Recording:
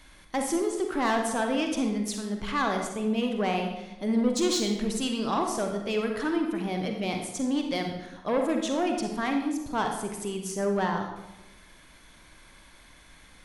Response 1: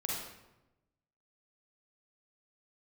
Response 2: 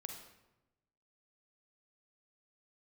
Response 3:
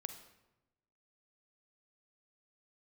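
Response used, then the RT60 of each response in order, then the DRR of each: 2; 1.0 s, 1.0 s, 1.0 s; -4.0 dB, 3.0 dB, 8.0 dB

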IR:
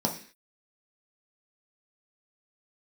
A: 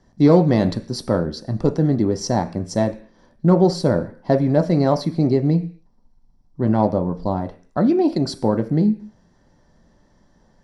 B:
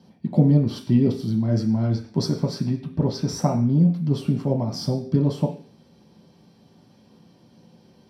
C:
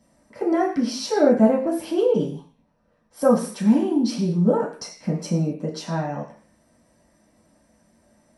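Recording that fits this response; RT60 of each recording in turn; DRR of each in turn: B; 0.45 s, 0.45 s, 0.45 s; 7.5 dB, 0.0 dB, -6.0 dB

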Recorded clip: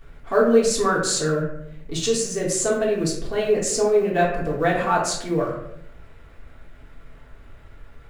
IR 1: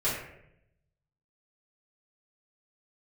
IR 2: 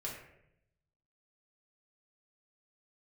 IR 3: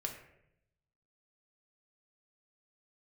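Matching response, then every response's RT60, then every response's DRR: 2; 0.80 s, 0.80 s, 0.80 s; -12.0 dB, -4.5 dB, 1.5 dB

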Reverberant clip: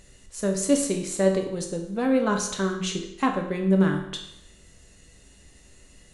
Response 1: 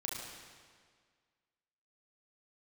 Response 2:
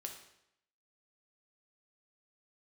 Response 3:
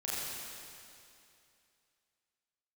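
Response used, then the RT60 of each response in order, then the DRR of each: 2; 1.8 s, 0.80 s, 2.6 s; -3.0 dB, 2.5 dB, -9.0 dB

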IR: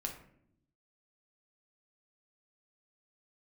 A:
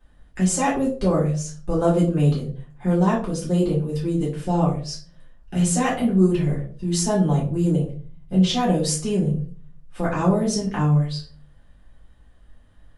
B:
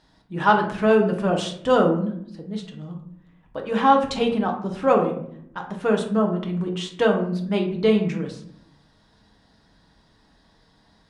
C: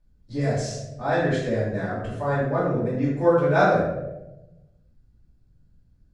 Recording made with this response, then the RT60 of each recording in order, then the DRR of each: B; 0.45 s, 0.70 s, 0.95 s; -7.0 dB, 1.5 dB, -12.5 dB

